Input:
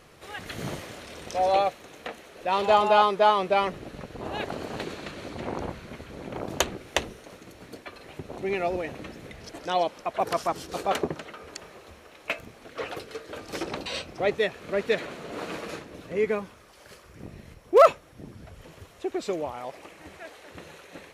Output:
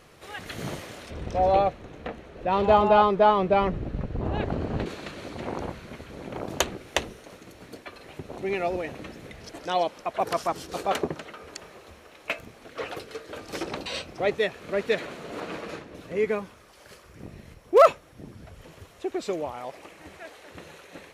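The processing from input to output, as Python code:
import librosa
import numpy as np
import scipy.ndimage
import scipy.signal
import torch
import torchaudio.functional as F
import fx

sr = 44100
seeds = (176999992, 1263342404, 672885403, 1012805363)

y = fx.riaa(x, sr, side='playback', at=(1.1, 4.86))
y = fx.high_shelf(y, sr, hz=5800.0, db=-8.5, at=(15.4, 15.95))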